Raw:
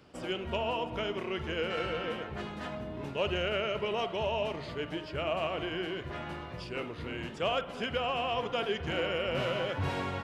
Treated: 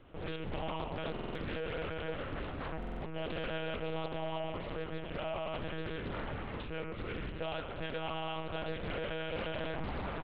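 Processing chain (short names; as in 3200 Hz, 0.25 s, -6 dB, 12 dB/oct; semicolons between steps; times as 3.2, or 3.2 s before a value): HPF 73 Hz 12 dB/oct; low shelf 200 Hz +3.5 dB; compressor 3:1, threshold -35 dBFS, peak gain reduction 7.5 dB; overloaded stage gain 33.5 dB; air absorption 64 m; on a send: tapped delay 89/118/125/336 ms -13.5/-16.5/-18.5/-12.5 dB; on the sum: Schroeder reverb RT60 2 s, combs from 26 ms, DRR 9.5 dB; monotone LPC vocoder at 8 kHz 160 Hz; stuck buffer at 1.12/2.78, samples 2048, times 4; Doppler distortion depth 0.49 ms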